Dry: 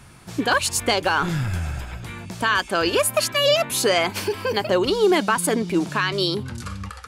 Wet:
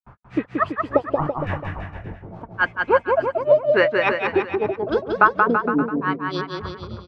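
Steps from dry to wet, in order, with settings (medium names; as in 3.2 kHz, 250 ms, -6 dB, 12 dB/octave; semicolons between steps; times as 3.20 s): LFO low-pass sine 0.83 Hz 480–2000 Hz; granulator 176 ms, grains 3.5 per s, spray 100 ms, pitch spread up and down by 3 st; harmonic-percussive split harmonic -3 dB; on a send: bouncing-ball echo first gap 180 ms, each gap 0.85×, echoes 5; on the sum: trim +2.5 dB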